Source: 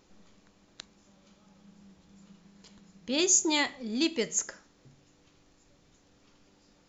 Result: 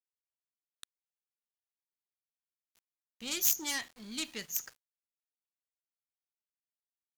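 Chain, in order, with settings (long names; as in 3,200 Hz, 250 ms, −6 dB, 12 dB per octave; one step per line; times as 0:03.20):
phase distortion by the signal itself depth 0.14 ms
downward expander −50 dBFS
parametric band 440 Hz −14 dB 2.6 octaves
centre clipping without the shift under −48.5 dBFS
wrong playback speed 25 fps video run at 24 fps
level −3 dB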